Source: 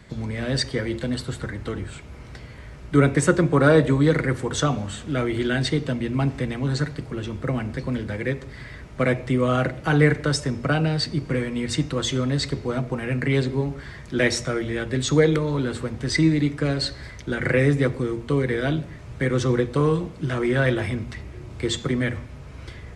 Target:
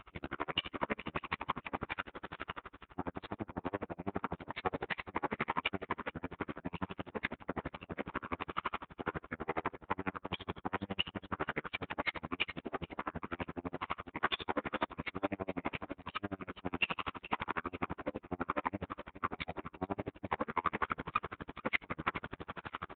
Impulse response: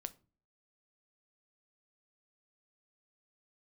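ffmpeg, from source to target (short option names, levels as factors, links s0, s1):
-filter_complex "[0:a]equalizer=f=1700:t=o:w=2.7:g=-2.5,aecho=1:1:6.7:0.78,areverse,acompressor=threshold=0.0316:ratio=16,areverse,aeval=exprs='0.0841*(cos(1*acos(clip(val(0)/0.0841,-1,1)))-cos(1*PI/2))+0.00168*(cos(3*acos(clip(val(0)/0.0841,-1,1)))-cos(3*PI/2))+0.0266*(cos(4*acos(clip(val(0)/0.0841,-1,1)))-cos(4*PI/2))+0.0106*(cos(8*acos(clip(val(0)/0.0841,-1,1)))-cos(8*PI/2))':c=same,bandpass=f=2500:t=q:w=0.51:csg=0,asetrate=27781,aresample=44100,atempo=1.5874,aeval=exprs='val(0)+0.000631*(sin(2*PI*50*n/s)+sin(2*PI*2*50*n/s)/2+sin(2*PI*3*50*n/s)/3+sin(2*PI*4*50*n/s)/4+sin(2*PI*5*50*n/s)/5)':c=same,asplit=2[s0][s1];[s1]aecho=0:1:436|872|1308:0.224|0.0672|0.0201[s2];[s0][s2]amix=inputs=2:normalize=0,aresample=8000,aresample=44100,aeval=exprs='val(0)*pow(10,-39*(0.5-0.5*cos(2*PI*12*n/s))/20)':c=same,volume=2.51"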